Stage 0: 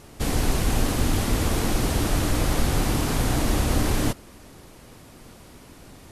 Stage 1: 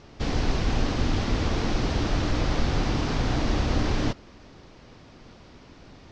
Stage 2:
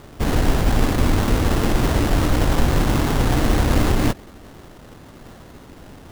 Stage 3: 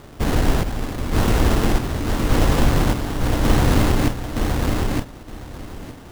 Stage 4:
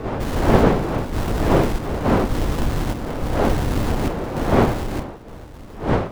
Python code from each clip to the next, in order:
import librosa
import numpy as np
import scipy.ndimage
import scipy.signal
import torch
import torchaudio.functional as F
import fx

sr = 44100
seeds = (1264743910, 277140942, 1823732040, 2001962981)

y1 = scipy.signal.sosfilt(scipy.signal.butter(6, 5800.0, 'lowpass', fs=sr, output='sos'), x)
y1 = y1 * 10.0 ** (-2.0 / 20.0)
y2 = fx.sample_hold(y1, sr, seeds[0], rate_hz=2400.0, jitter_pct=20)
y2 = y2 * 10.0 ** (7.0 / 20.0)
y3 = fx.chopper(y2, sr, hz=0.87, depth_pct=60, duty_pct=55)
y3 = fx.echo_feedback(y3, sr, ms=916, feedback_pct=19, wet_db=-3.5)
y4 = scipy.ndimage.median_filter(y3, 25, mode='constant')
y4 = fx.dmg_wind(y4, sr, seeds[1], corner_hz=560.0, level_db=-17.0)
y4 = y4 * 10.0 ** (-5.0 / 20.0)